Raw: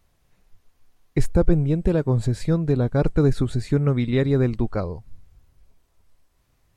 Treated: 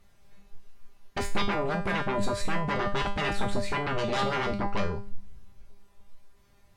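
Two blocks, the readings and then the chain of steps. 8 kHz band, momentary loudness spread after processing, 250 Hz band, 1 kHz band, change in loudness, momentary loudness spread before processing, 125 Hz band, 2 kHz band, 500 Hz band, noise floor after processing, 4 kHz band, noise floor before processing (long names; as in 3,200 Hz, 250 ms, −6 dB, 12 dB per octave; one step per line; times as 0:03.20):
can't be measured, 5 LU, −11.0 dB, +7.5 dB, −8.0 dB, 7 LU, −15.0 dB, +6.0 dB, −7.5 dB, −60 dBFS, +6.0 dB, −66 dBFS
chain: high-shelf EQ 5,900 Hz −6 dB
sine wavefolder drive 20 dB, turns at −5.5 dBFS
tuned comb filter 200 Hz, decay 0.38 s, harmonics all, mix 90%
level −6.5 dB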